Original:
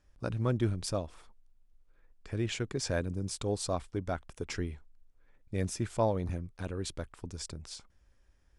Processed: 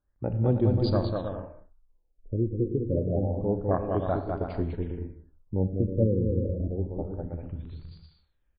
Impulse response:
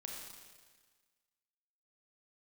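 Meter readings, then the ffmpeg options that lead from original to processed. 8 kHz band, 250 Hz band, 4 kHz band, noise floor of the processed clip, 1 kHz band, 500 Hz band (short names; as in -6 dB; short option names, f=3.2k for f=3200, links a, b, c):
under -40 dB, +8.0 dB, n/a, -71 dBFS, +3.5 dB, +7.0 dB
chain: -filter_complex "[0:a]aexciter=amount=7:drive=4.8:freq=5.6k,afwtdn=0.0224,aecho=1:1:200|320|392|435.2|461.1:0.631|0.398|0.251|0.158|0.1,asplit=2[a][b];[1:a]atrim=start_sample=2205,afade=t=out:st=0.27:d=0.01,atrim=end_sample=12348[c];[b][c]afir=irnorm=-1:irlink=0,volume=-1.5dB[d];[a][d]amix=inputs=2:normalize=0,afftfilt=real='re*lt(b*sr/1024,520*pow(4900/520,0.5+0.5*sin(2*PI*0.28*pts/sr)))':imag='im*lt(b*sr/1024,520*pow(4900/520,0.5+0.5*sin(2*PI*0.28*pts/sr)))':win_size=1024:overlap=0.75,volume=2.5dB"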